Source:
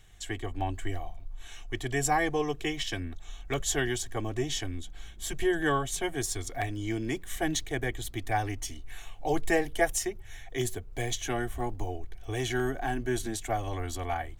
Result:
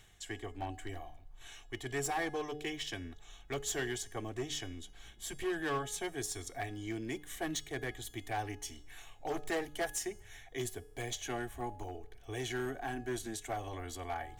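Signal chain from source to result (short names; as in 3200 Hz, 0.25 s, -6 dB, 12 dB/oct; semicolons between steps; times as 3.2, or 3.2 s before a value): hard clip -23.5 dBFS, distortion -15 dB; reverse; upward compressor, threshold -33 dBFS; reverse; low shelf 73 Hz -10 dB; resonator 420 Hz, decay 0.69 s, mix 60%; de-hum 149.9 Hz, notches 5; gain +1.5 dB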